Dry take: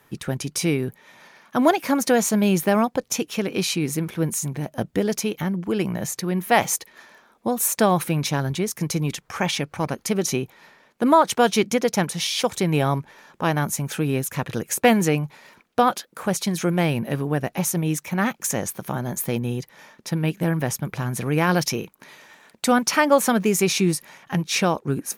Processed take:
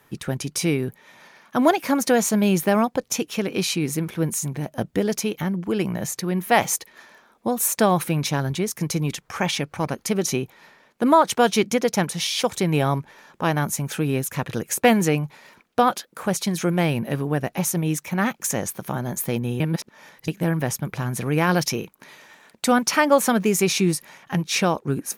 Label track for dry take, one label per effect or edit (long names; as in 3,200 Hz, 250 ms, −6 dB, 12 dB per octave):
19.600000	20.280000	reverse